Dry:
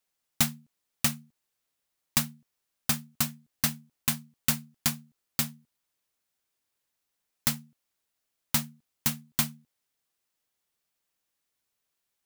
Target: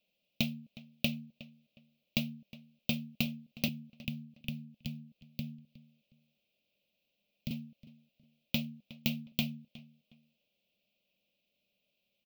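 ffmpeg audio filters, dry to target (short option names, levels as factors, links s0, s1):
-filter_complex "[0:a]acompressor=threshold=0.0316:ratio=12,equalizer=f=200:t=o:w=0.68:g=14.5,asettb=1/sr,asplit=3[s0][s1][s2];[s0]atrim=end=3.684[s3];[s1]atrim=start=3.68:end=7.51,asetpts=PTS-STARTPTS,afade=t=in:d=0.004:c=qsin,afade=t=out:st=3.826:d=0.004:c=qsin,acrossover=split=200[s4][s5];[s5]acompressor=threshold=0.00631:ratio=8[s6];[s4][s6]amix=inputs=2:normalize=0[s7];[s2]atrim=start=7.506[s8];[s3][s7]acrossfade=d=0.004:c1=hsin:c2=qsin[s9];[s9][s8]acrossfade=d=0.004:c1=qsin:c2=hsin,firequalizer=gain_entry='entry(400,0);entry(580,13);entry(870,-11);entry(1700,-19);entry(2500,12);entry(8400,-22);entry(15000,-2)':delay=0.05:min_phase=1,asplit=2[s10][s11];[s11]adelay=363,lowpass=f=3200:p=1,volume=0.126,asplit=2[s12][s13];[s13]adelay=363,lowpass=f=3200:p=1,volume=0.27[s14];[s10][s12][s14]amix=inputs=3:normalize=0"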